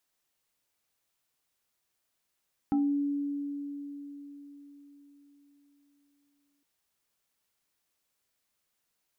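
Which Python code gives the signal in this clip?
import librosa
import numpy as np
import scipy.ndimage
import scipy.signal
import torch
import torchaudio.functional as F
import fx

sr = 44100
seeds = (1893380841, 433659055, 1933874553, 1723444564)

y = fx.fm2(sr, length_s=3.91, level_db=-22.5, carrier_hz=285.0, ratio=1.8, index=0.74, index_s=0.34, decay_s=4.5, shape='exponential')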